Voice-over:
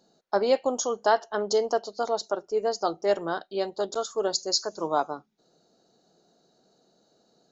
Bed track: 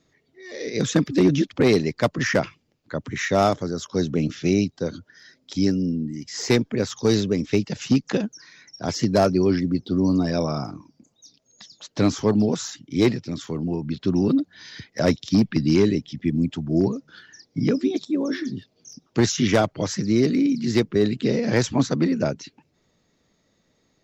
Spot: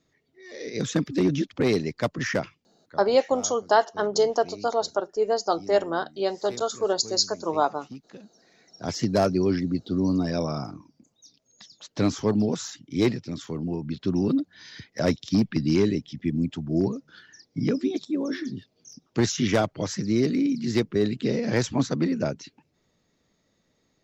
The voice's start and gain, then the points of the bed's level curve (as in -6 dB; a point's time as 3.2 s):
2.65 s, +2.5 dB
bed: 2.34 s -5 dB
3.32 s -22.5 dB
8.23 s -22.5 dB
8.9 s -3.5 dB